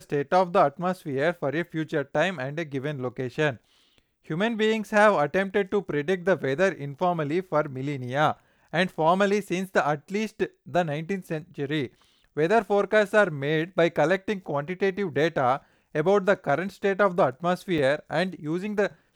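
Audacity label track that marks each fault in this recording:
17.780000	17.780000	gap 4.4 ms

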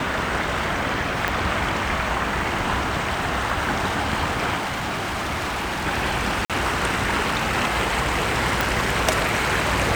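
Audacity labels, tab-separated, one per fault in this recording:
1.280000	1.280000	pop -7 dBFS
4.570000	5.870000	clipped -23 dBFS
6.450000	6.500000	gap 47 ms
8.610000	8.610000	pop

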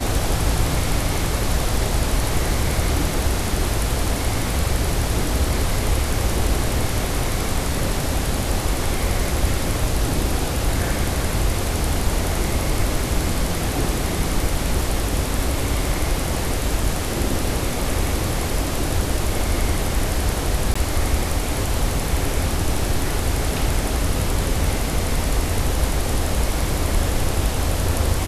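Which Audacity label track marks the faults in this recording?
16.270000	16.270000	gap 2 ms
20.740000	20.750000	gap 15 ms

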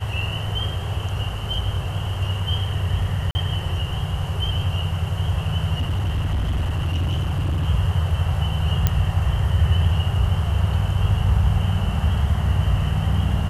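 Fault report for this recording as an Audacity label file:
3.310000	3.350000	gap 40 ms
5.740000	7.680000	clipped -18.5 dBFS
8.870000	8.870000	pop -5 dBFS

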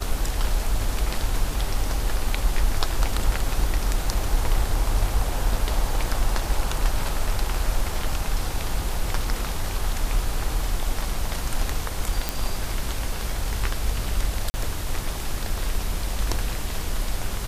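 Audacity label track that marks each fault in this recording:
12.290000	12.290000	pop
14.500000	14.540000	gap 40 ms

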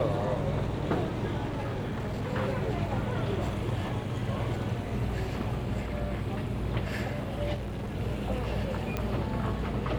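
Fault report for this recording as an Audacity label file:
1.470000	2.290000	clipped -29 dBFS
7.540000	7.960000	clipped -32 dBFS
8.970000	8.970000	pop -17 dBFS

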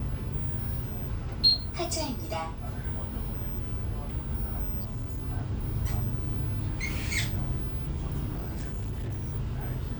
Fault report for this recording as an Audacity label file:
4.800000	5.230000	clipped -30 dBFS
8.340000	9.340000	clipped -30 dBFS

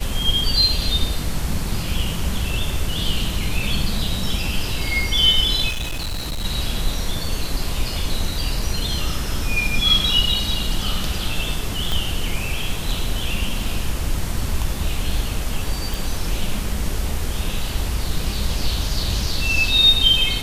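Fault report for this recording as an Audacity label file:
5.680000	6.450000	clipped -22 dBFS
11.920000	11.920000	pop
15.940000	15.940000	pop

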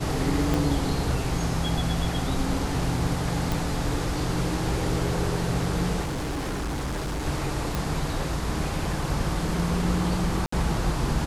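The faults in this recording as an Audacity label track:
0.540000	0.540000	pop
3.520000	3.520000	pop
6.020000	7.270000	clipped -26 dBFS
7.750000	7.750000	pop
10.460000	10.520000	gap 64 ms

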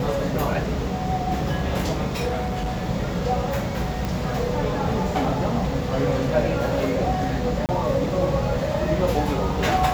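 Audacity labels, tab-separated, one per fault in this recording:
2.270000	2.790000	clipped -22 dBFS
4.050000	4.050000	pop
7.660000	7.690000	gap 28 ms

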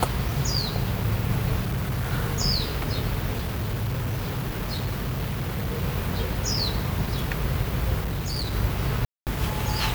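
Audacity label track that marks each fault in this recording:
1.610000	2.130000	clipped -23 dBFS
3.350000	5.830000	clipped -23.5 dBFS
8.030000	8.550000	clipped -24.5 dBFS
9.050000	9.270000	gap 0.218 s

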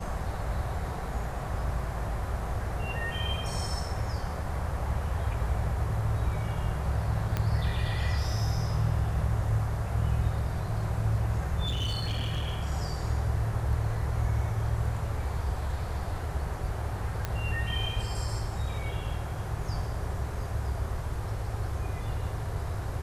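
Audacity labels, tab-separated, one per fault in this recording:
7.370000	7.370000	pop -15 dBFS
11.660000	12.530000	clipped -26 dBFS
17.250000	17.250000	pop -16 dBFS

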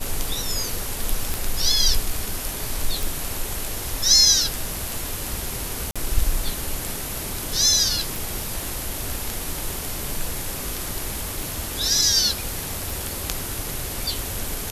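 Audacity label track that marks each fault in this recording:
1.340000	1.340000	pop
3.030000	3.030000	pop
5.910000	5.960000	gap 46 ms
8.160000	8.160000	pop
11.430000	11.430000	pop
12.900000	12.900000	pop

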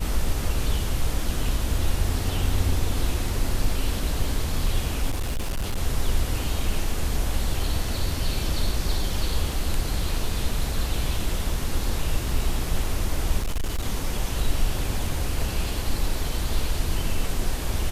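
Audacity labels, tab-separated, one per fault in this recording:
5.100000	5.780000	clipped -22.5 dBFS
13.390000	13.870000	clipped -21.5 dBFS

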